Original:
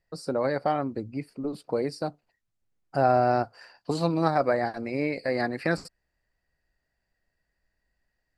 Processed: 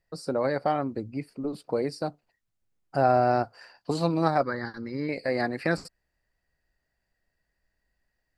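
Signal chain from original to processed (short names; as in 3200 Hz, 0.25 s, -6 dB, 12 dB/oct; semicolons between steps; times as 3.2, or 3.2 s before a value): 4.43–5.09 fixed phaser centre 2500 Hz, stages 6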